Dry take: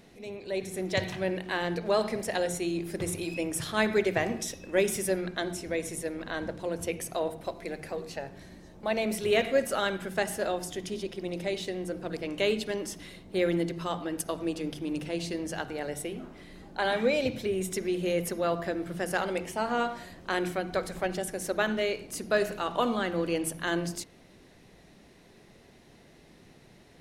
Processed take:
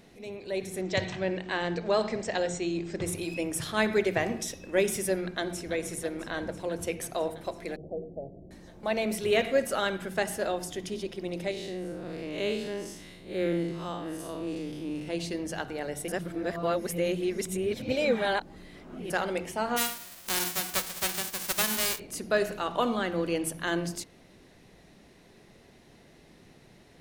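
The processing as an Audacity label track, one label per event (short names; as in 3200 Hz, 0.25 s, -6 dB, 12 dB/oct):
0.810000	3.060000	brick-wall FIR low-pass 8500 Hz
5.160000	5.730000	echo throw 0.33 s, feedback 80%, level -12 dB
7.760000	8.510000	steep low-pass 680 Hz 48 dB/oct
11.510000	15.080000	time blur width 0.133 s
16.080000	19.100000	reverse
19.760000	21.980000	spectral whitening exponent 0.1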